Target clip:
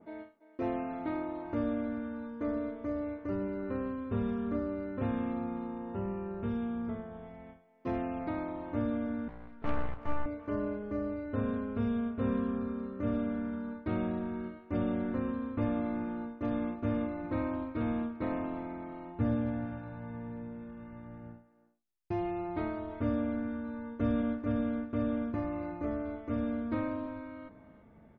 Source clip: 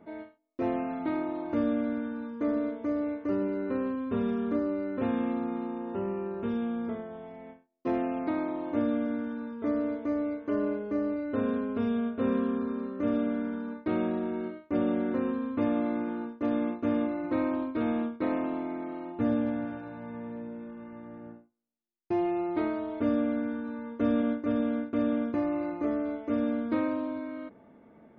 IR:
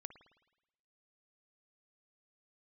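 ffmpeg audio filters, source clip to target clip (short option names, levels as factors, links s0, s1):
-filter_complex "[0:a]asettb=1/sr,asplit=3[s0][s1][s2];[s0]atrim=end=9.284[s3];[s1]atrim=start=9.28:end=10.26,asetpts=PTS-STARTPTS,afade=t=in:d=0.004:c=qsin,afade=t=out:st=0.976:d=0.004:c=qsin,aeval=exprs='0.133*(cos(1*acos(clip(val(0)/0.133,-1,1)))-cos(1*PI/2))+0.0168*(cos(3*acos(clip(val(0)/0.133,-1,1)))-cos(3*PI/2))+0.0211*(cos(7*acos(clip(val(0)/0.133,-1,1)))-cos(7*PI/2))+0.000944*(cos(8*acos(clip(val(0)/0.133,-1,1)))-cos(8*PI/2))':c=same[s4];[s2]atrim=start=10.256[s5];[s3][s4]acrossfade=d=0.004:c1=hsin:c2=qsin[s6];[s6][s5]acrossfade=d=0.004:c1=qsin:c2=hsin,asubboost=boost=6:cutoff=120,asplit=2[s7][s8];[s8]adelay=340,highpass=300,lowpass=3400,asoftclip=type=hard:threshold=0.0596,volume=0.178[s9];[s7][s9]amix=inputs=2:normalize=0,adynamicequalizer=threshold=0.00224:dfrequency=2400:dqfactor=0.7:tfrequency=2400:tqfactor=0.7:attack=5:release=100:ratio=0.375:range=2:mode=cutabove:tftype=highshelf,volume=0.708"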